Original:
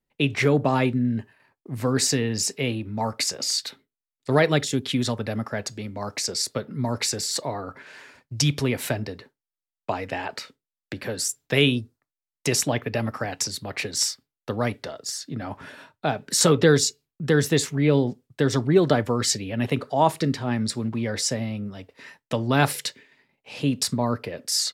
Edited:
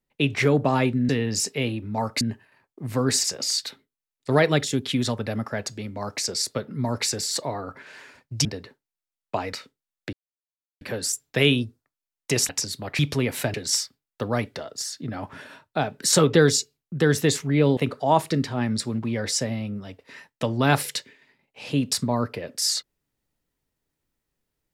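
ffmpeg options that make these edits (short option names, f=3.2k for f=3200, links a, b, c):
-filter_complex "[0:a]asplit=11[a][b][c][d][e][f][g][h][i][j][k];[a]atrim=end=1.092[l];[b]atrim=start=2.118:end=3.242[m];[c]atrim=start=1.088:end=2.122[n];[d]atrim=start=3.238:end=8.452[o];[e]atrim=start=8.998:end=10.082[p];[f]atrim=start=10.368:end=10.97,asetpts=PTS-STARTPTS,afade=t=out:st=0.598:d=0.004:c=hsin,apad=pad_dur=0.68[q];[g]atrim=start=10.97:end=12.652,asetpts=PTS-STARTPTS,afade=t=in:d=0.004:c=hsin[r];[h]atrim=start=13.318:end=13.822[s];[i]atrim=start=8.448:end=9.002[t];[j]atrim=start=13.818:end=18.052[u];[k]atrim=start=19.668[v];[l][m]acrossfade=d=0.004:c1=hsin:c2=hsin[w];[w][n]acrossfade=d=0.004:c1=hsin:c2=hsin[x];[x][o]acrossfade=d=0.004:c1=hsin:c2=hsin[y];[y][p]acrossfade=d=0.004:c1=hsin:c2=hsin[z];[q][r]concat=n=2:v=0:a=1[aa];[z][aa]acrossfade=d=0.004:c1=hsin:c2=hsin[ab];[ab][s]acrossfade=d=0.004:c1=hsin:c2=hsin[ac];[ac][t]acrossfade=d=0.004:c1=hsin:c2=hsin[ad];[ad][u]acrossfade=d=0.004:c1=hsin:c2=hsin[ae];[ae][v]acrossfade=d=0.004:c1=hsin:c2=hsin"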